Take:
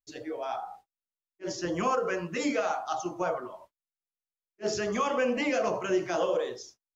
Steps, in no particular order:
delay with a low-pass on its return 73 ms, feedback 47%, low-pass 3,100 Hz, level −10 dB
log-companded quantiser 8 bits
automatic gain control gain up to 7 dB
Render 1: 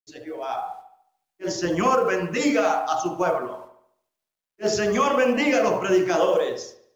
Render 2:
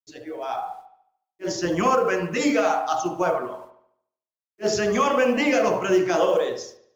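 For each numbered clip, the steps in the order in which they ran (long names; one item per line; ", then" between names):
automatic gain control, then delay with a low-pass on its return, then log-companded quantiser
log-companded quantiser, then automatic gain control, then delay with a low-pass on its return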